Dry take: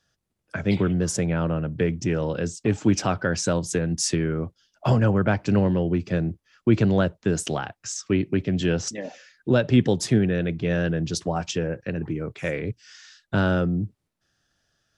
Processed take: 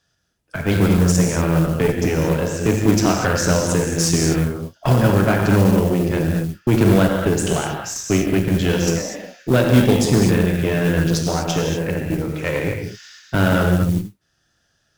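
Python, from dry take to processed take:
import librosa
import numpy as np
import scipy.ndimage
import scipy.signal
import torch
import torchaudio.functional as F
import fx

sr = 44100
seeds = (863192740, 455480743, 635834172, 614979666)

y = fx.rev_gated(x, sr, seeds[0], gate_ms=270, shape='flat', drr_db=-0.5)
y = fx.mod_noise(y, sr, seeds[1], snr_db=23)
y = fx.cheby_harmonics(y, sr, harmonics=(6,), levels_db=(-20,), full_scale_db=-7.0)
y = F.gain(torch.from_numpy(y), 2.5).numpy()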